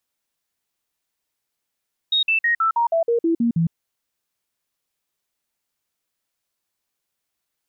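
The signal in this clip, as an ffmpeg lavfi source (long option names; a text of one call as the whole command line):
ffmpeg -f lavfi -i "aevalsrc='0.168*clip(min(mod(t,0.16),0.11-mod(t,0.16))/0.005,0,1)*sin(2*PI*3750*pow(2,-floor(t/0.16)/2)*mod(t,0.16))':duration=1.6:sample_rate=44100" out.wav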